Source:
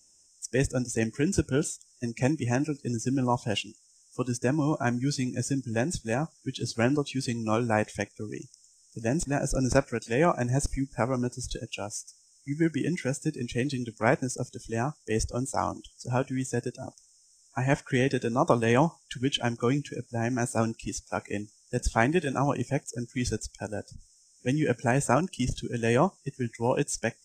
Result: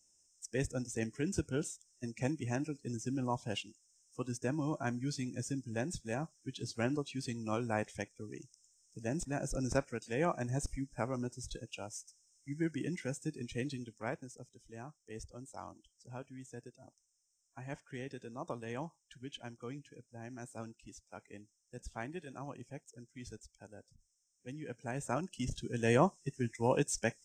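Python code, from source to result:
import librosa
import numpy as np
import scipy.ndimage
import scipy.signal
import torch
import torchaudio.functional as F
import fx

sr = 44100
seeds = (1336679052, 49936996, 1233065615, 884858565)

y = fx.gain(x, sr, db=fx.line((13.68, -9.5), (14.3, -19.0), (24.65, -19.0), (25.15, -12.0), (25.9, -4.5)))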